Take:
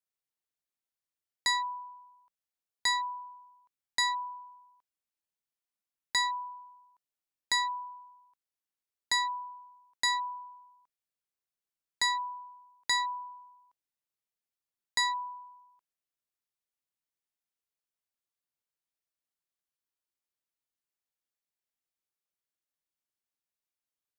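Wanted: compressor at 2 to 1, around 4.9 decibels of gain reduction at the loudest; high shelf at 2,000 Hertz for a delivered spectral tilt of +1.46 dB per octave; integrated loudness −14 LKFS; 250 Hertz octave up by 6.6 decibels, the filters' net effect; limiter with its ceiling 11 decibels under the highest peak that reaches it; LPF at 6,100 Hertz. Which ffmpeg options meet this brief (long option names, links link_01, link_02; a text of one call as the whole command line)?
ffmpeg -i in.wav -af "lowpass=6100,equalizer=frequency=250:width_type=o:gain=8.5,highshelf=frequency=2000:gain=-6.5,acompressor=threshold=-37dB:ratio=2,volume=28.5dB,alimiter=limit=-6dB:level=0:latency=1" out.wav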